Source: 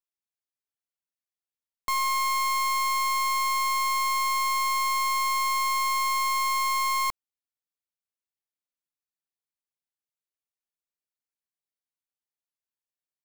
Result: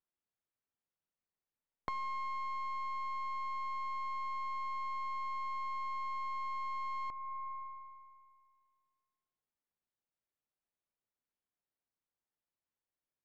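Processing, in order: tape spacing loss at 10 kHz 38 dB; on a send at -16.5 dB: reverb RT60 2.0 s, pre-delay 37 ms; on the sum: compressor 10:1, threshold -43 dBFS, peak gain reduction 17 dB; gain +5.5 dB

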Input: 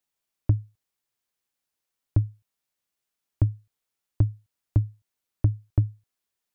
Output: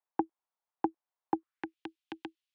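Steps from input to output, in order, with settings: frequency shift +20 Hz; band-pass sweep 340 Hz -> 1200 Hz, 3.41–4.58; wide varispeed 2.57×; gain +6.5 dB

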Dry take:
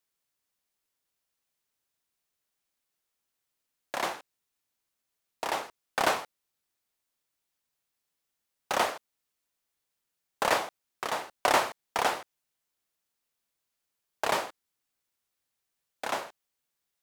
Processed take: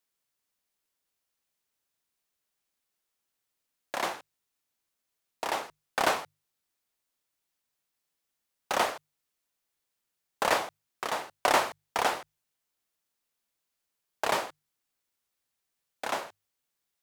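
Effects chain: notches 50/100/150 Hz

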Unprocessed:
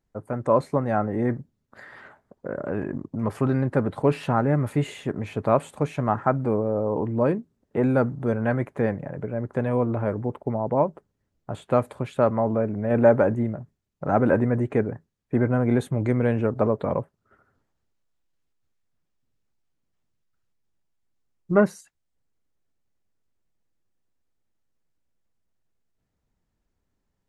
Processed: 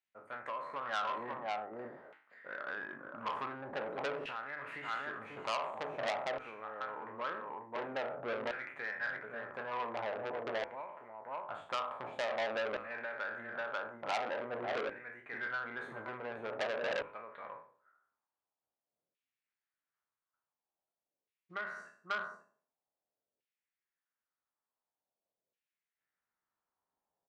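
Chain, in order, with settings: spectral trails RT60 0.50 s; dynamic EQ 1500 Hz, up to +8 dB, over -38 dBFS, Q 0.92; on a send: echo 0.541 s -9.5 dB; on the sum: compressor 8:1, threshold -22 dBFS, peak gain reduction 13.5 dB; LFO band-pass saw down 0.47 Hz 510–2700 Hz; notches 50/100/150/200/250/300/350/400/450/500 Hz; core saturation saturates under 3000 Hz; gain -1 dB

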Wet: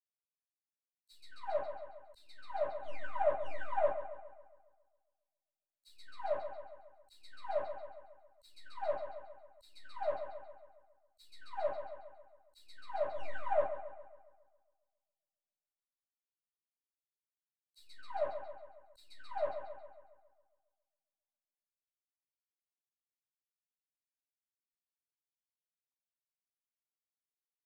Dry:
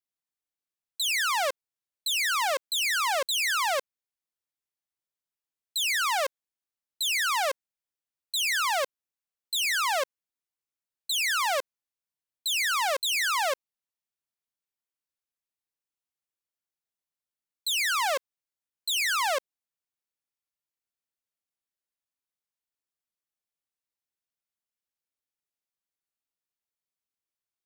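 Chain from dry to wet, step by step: switching dead time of 0.092 ms; treble ducked by the level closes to 380 Hz, closed at -29.5 dBFS; envelope flanger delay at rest 8.5 ms, full sweep at -29 dBFS; AGC gain up to 14.5 dB; gate -29 dBFS, range -28 dB; high shelf 2200 Hz +11.5 dB; darkening echo 0.137 s, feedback 65%, low-pass 4700 Hz, level -10 dB; reverb RT60 0.25 s, pre-delay 76 ms; auto swell 0.675 s; three-band expander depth 40%

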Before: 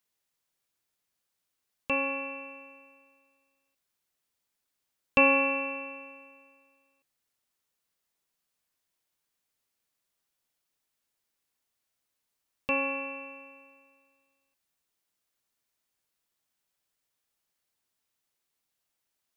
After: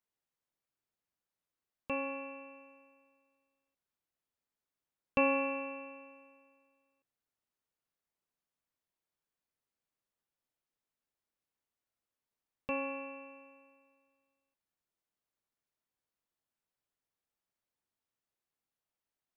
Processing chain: high shelf 2200 Hz -10.5 dB; gain -4.5 dB

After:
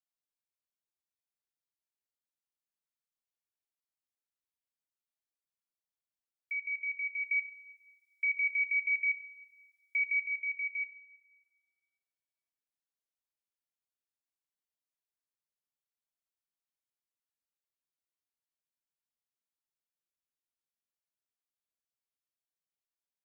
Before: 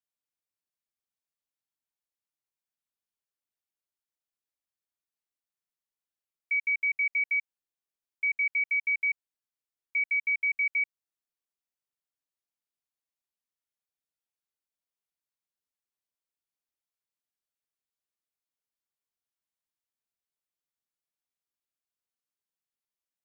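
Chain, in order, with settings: 7.24–10.22 high shelf 2300 Hz +11 dB; two-slope reverb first 0.41 s, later 1.7 s, from -16 dB, DRR 7.5 dB; gain -7.5 dB

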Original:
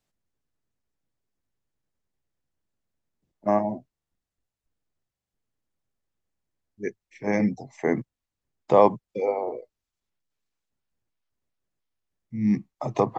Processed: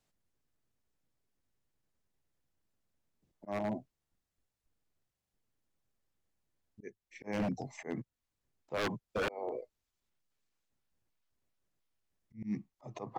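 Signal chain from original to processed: auto swell 0.45 s; wow and flutter 22 cents; wavefolder -27.5 dBFS

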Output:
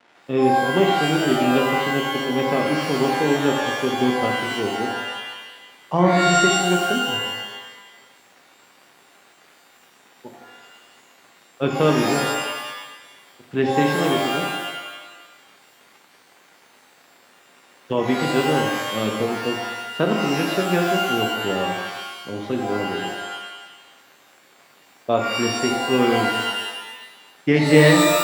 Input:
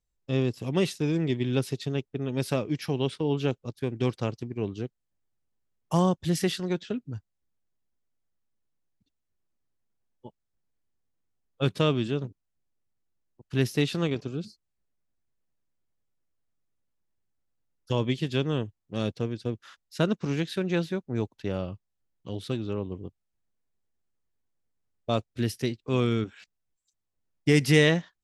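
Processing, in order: crackle 550/s -41 dBFS; BPF 210–2200 Hz; shimmer reverb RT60 1.1 s, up +12 st, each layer -2 dB, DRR 1.5 dB; gain +6 dB

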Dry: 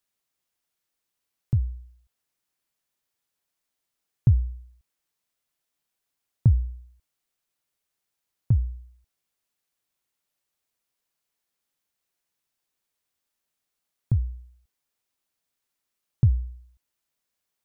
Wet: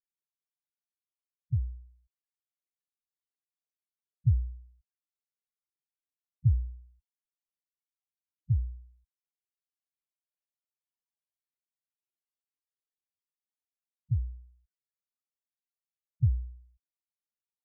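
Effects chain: loudest bins only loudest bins 4; gain -5.5 dB

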